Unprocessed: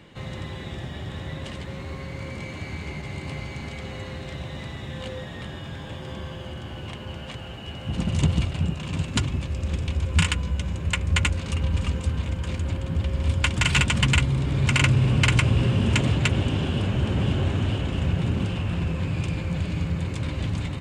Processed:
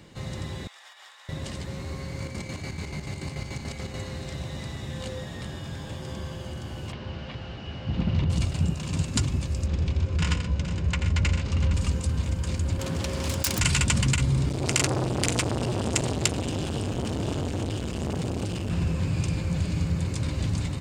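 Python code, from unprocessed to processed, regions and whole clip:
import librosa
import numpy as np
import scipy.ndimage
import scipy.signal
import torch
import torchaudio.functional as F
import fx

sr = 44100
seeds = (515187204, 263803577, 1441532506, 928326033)

y = fx.chain(x, sr, fx.highpass(hz=950.0, slope=24),
    fx.high_shelf(hz=2700.0, db=-5.5),
    fx.over_compress(threshold_db=-48.0, ratio=-0.5), at=(0.67, 1.29))
y = fx.chain(y, sr, fx.chopper(hz=6.9, depth_pct=65, duty_pct=50),
    fx.env_flatten(amount_pct=50), at=(2.2, 4.01))
y = fx.chain(y, sr, fx.delta_mod(bps=64000, step_db=-36.0),
    fx.lowpass(hz=3500.0, slope=24), at=(6.92, 8.3))
y = fx.chain(y, sr, fx.overload_stage(gain_db=16.5),
    fx.air_absorb(metres=140.0),
    fx.echo_multitap(ms=(85, 126, 462, 857), db=(-8.5, -11.0, -12.0, -15.5)), at=(9.66, 11.74))
y = fx.chain(y, sr, fx.self_delay(depth_ms=0.45),
    fx.highpass(hz=380.0, slope=6),
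    fx.env_flatten(amount_pct=50), at=(12.79, 13.6))
y = fx.chain(y, sr, fx.high_shelf(hz=3600.0, db=7.5),
    fx.transformer_sat(knee_hz=1600.0), at=(14.49, 18.7))
y = fx.curve_eq(y, sr, hz=(130.0, 3200.0, 4800.0), db=(0, -4, 6))
y = fx.over_compress(y, sr, threshold_db=-21.0, ratio=-1.0)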